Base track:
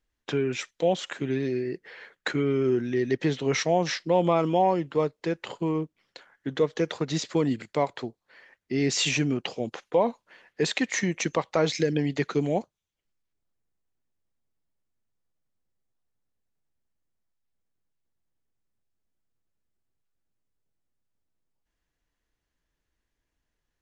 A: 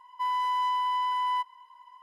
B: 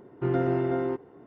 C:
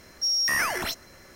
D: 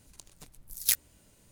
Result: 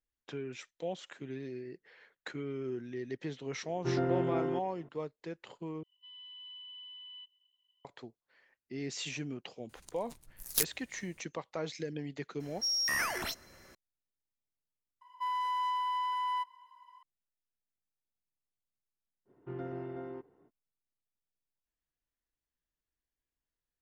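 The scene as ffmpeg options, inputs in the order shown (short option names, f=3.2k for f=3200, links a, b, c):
-filter_complex "[2:a]asplit=2[a][b];[1:a]asplit=2[c][d];[0:a]volume=-14dB[e];[c]asuperpass=centerf=3200:order=4:qfactor=5.4[f];[4:a]aeval=exprs='if(lt(val(0),0),0.708*val(0),val(0))':c=same[g];[e]asplit=3[h][i][j];[h]atrim=end=5.834[k];[f]atrim=end=2.02,asetpts=PTS-STARTPTS,volume=-3.5dB[l];[i]atrim=start=7.846:end=15.014[m];[d]atrim=end=2.02,asetpts=PTS-STARTPTS,volume=-5.5dB[n];[j]atrim=start=17.026[o];[a]atrim=end=1.26,asetpts=PTS-STARTPTS,volume=-5.5dB,afade=t=in:d=0.004:c=hsin,afade=t=out:st=1.256:d=0.004:c=hsin,adelay=3630[p];[g]atrim=end=1.51,asetpts=PTS-STARTPTS,volume=-3dB,afade=t=in:d=0.004:c=hsin,afade=t=out:st=1.506:d=0.004:c=hsin,adelay=9690[q];[3:a]atrim=end=1.35,asetpts=PTS-STARTPTS,volume=-7dB,afade=t=in:d=0.004:c=hsin,afade=t=out:st=1.346:d=0.004:c=hsin,adelay=12400[r];[b]atrim=end=1.26,asetpts=PTS-STARTPTS,volume=-15dB,afade=t=in:d=0.05,afade=t=out:st=1.21:d=0.05,adelay=19250[s];[k][l]acrossfade=d=0.004:c1=hsin:c2=hsin[t];[t][m]acrossfade=d=0.004:c1=hsin:c2=hsin[u];[u][n]acrossfade=d=0.004:c1=hsin:c2=hsin[v];[v][o]acrossfade=d=0.004:c1=hsin:c2=hsin[w];[w][p][q][r][s]amix=inputs=5:normalize=0"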